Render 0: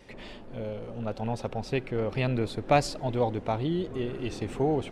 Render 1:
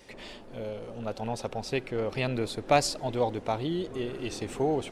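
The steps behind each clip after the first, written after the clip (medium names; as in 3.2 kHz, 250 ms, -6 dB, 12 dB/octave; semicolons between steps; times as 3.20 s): tone controls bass -5 dB, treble +7 dB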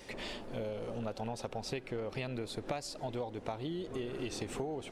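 compression 16:1, threshold -37 dBFS, peak gain reduction 21 dB; trim +2.5 dB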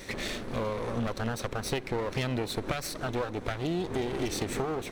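comb filter that takes the minimum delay 0.5 ms; trim +9 dB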